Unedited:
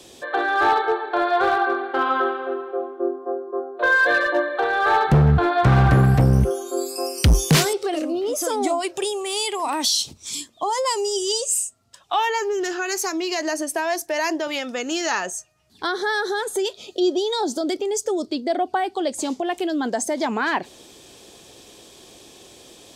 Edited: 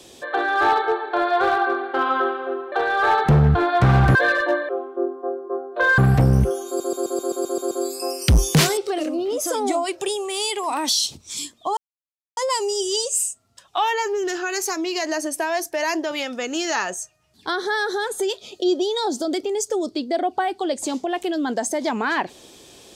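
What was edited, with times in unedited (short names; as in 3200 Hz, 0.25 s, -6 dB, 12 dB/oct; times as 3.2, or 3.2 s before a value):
2.72–4.01 swap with 4.55–5.98
6.67 stutter 0.13 s, 9 plays
10.73 insert silence 0.60 s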